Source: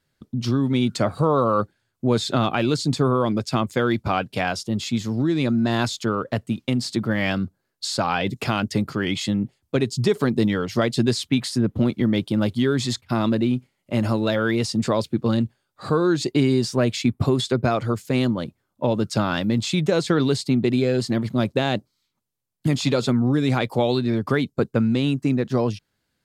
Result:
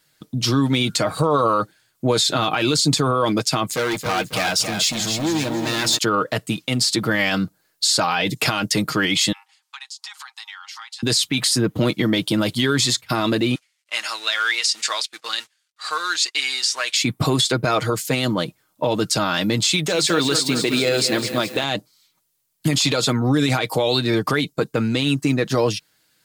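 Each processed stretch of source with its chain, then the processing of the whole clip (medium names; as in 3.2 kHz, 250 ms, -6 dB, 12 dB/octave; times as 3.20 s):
3.66–5.98 s: compression 1.5:1, threshold -27 dBFS + hard clipper -25 dBFS + bit-crushed delay 273 ms, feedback 35%, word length 10-bit, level -6.5 dB
9.32–11.03 s: Chebyshev high-pass 790 Hz, order 8 + compression, threshold -45 dBFS + distance through air 53 m
13.55–16.96 s: companding laws mixed up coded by A + Butterworth band-pass 3.6 kHz, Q 0.52
19.68–21.64 s: bass shelf 150 Hz -12 dB + bit-crushed delay 206 ms, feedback 55%, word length 8-bit, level -10.5 dB
whole clip: tilt EQ +2.5 dB/octave; comb 6.4 ms, depth 47%; peak limiter -17 dBFS; trim +8 dB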